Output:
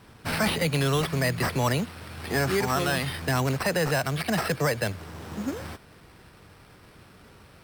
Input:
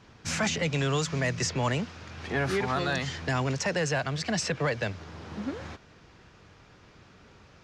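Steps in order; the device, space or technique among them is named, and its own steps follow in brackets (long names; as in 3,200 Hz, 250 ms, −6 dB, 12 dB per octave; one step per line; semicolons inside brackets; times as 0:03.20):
crushed at another speed (tape speed factor 0.5×; decimation without filtering 13×; tape speed factor 2×)
level +3 dB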